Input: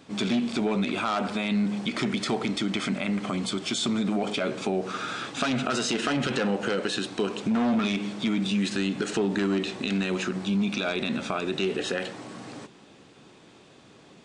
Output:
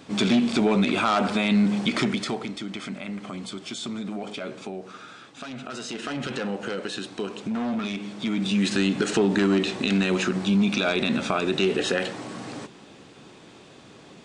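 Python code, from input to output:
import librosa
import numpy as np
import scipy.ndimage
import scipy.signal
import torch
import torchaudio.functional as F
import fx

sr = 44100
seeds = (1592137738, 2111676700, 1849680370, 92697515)

y = fx.gain(x, sr, db=fx.line((1.96, 5.0), (2.54, -6.0), (4.52, -6.0), (5.27, -13.0), (6.27, -3.5), (8.07, -3.5), (8.71, 4.5)))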